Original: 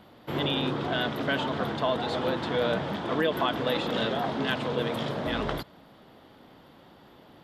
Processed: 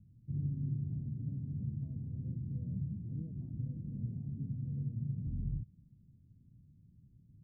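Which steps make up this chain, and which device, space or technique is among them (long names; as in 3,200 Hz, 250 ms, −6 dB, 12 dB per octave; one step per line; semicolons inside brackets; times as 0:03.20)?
the neighbour's flat through the wall (low-pass filter 150 Hz 24 dB per octave; parametric band 110 Hz +4 dB 0.4 octaves)
level +1.5 dB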